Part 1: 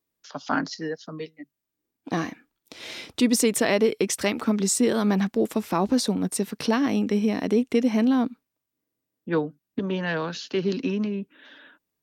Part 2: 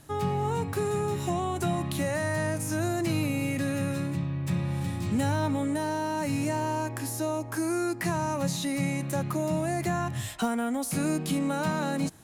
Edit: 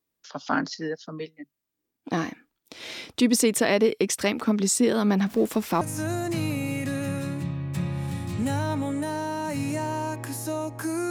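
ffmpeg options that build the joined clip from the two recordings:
ffmpeg -i cue0.wav -i cue1.wav -filter_complex "[0:a]asettb=1/sr,asplit=3[link_01][link_02][link_03];[link_01]atrim=end=5.264[link_04];[link_02]atrim=start=5.26:end=5.81,asetpts=PTS-STARTPTS,afade=type=in:duration=0.004:curve=qsin,afade=type=out:start_time=0.546:duration=0.004:curve=qsin,aeval=exprs='val(0)+0.5*0.0119*sgn(val(0))':channel_layout=same[link_05];[link_03]atrim=start=5.806[link_06];[link_04][link_05]acrossfade=duration=0.004:curve1=hsin:curve2=qsin[link_07];[link_07][link_06]acrossfade=duration=0.004:curve1=qsin:curve2=hsin,apad=whole_dur=11.1,atrim=end=11.1,atrim=end=5.812[link_08];[1:a]atrim=start=2.538:end=7.83[link_09];[link_08][link_09]acrossfade=duration=0.004:curve1=hsin:curve2=hsin" out.wav

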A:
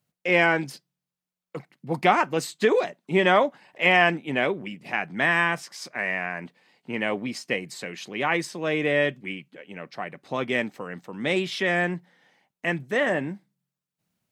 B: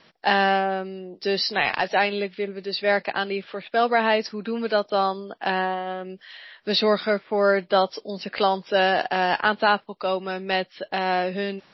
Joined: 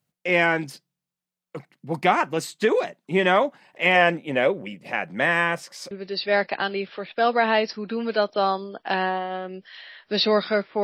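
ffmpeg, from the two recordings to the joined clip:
ffmpeg -i cue0.wav -i cue1.wav -filter_complex "[0:a]asettb=1/sr,asplit=3[link_01][link_02][link_03];[link_01]atrim=end=3.954[link_04];[link_02]atrim=start=3.95:end=5.91,asetpts=PTS-STARTPTS,afade=type=in:duration=0.004:curve=qsin,afade=type=out:start_time=1.956:duration=0.004:curve=qsin,equalizer=frequency=540:width=5.5:gain=11.5[link_05];[link_03]atrim=start=5.906[link_06];[link_04][link_05]acrossfade=duration=0.004:curve1=hsin:curve2=qsin[link_07];[link_07][link_06]acrossfade=duration=0.004:curve1=qsin:curve2=hsin,apad=whole_dur=10.83,atrim=end=10.83,atrim=end=5.912[link_08];[1:a]atrim=start=2.468:end=7.39[link_09];[link_08][link_09]acrossfade=duration=0.004:curve1=hsin:curve2=hsin" out.wav

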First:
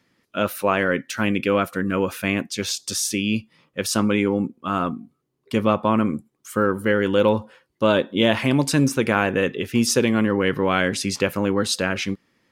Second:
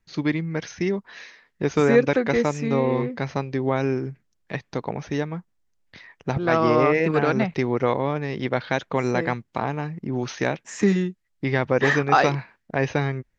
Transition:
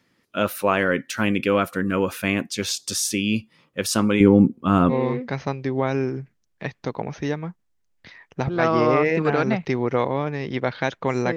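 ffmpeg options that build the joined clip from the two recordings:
ffmpeg -i cue0.wav -i cue1.wav -filter_complex "[0:a]asettb=1/sr,asplit=3[link_01][link_02][link_03];[link_01]atrim=end=4.204[link_04];[link_02]atrim=start=4.2:end=4.94,asetpts=PTS-STARTPTS,afade=type=in:duration=0.004:curve=qsin,afade=type=out:start_time=0.736:duration=0.004:curve=qsin,lowshelf=frequency=430:gain=11.5[link_05];[link_03]atrim=start=4.936[link_06];[link_04][link_05]acrossfade=duration=0.004:curve1=hsin:curve2=qsin[link_07];[link_07][link_06]acrossfade=duration=0.004:curve1=qsin:curve2=hsin,apad=whole_dur=11.36,atrim=end=11.36,atrim=end=4.94,asetpts=PTS-STARTPTS[link_08];[1:a]atrim=start=2.77:end=9.25,asetpts=PTS-STARTPTS[link_09];[link_08][link_09]acrossfade=duration=0.06:curve1=tri:curve2=tri" out.wav

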